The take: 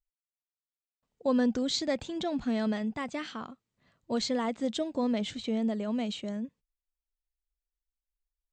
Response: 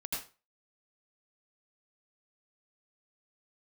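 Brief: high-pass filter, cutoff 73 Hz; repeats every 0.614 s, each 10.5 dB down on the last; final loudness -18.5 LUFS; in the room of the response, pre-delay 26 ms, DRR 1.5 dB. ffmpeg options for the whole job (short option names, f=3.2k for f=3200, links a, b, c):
-filter_complex "[0:a]highpass=73,aecho=1:1:614|1228|1842:0.299|0.0896|0.0269,asplit=2[a][b];[1:a]atrim=start_sample=2205,adelay=26[c];[b][c]afir=irnorm=-1:irlink=0,volume=-3.5dB[d];[a][d]amix=inputs=2:normalize=0,volume=11dB"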